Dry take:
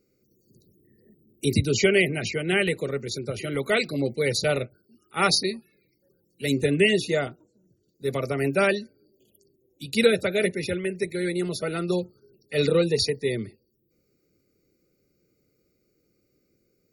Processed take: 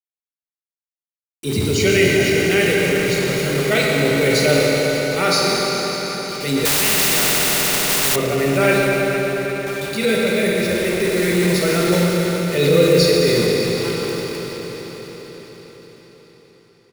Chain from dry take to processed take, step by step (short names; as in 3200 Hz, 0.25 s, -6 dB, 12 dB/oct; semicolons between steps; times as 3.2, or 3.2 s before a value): echo 1.091 s -21 dB; bit-crush 6-bit; AGC gain up to 16 dB; reverb RT60 5.5 s, pre-delay 23 ms, DRR -4 dB; transient shaper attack -5 dB, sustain +1 dB; 6.65–8.16 spectral compressor 4:1; gain -5.5 dB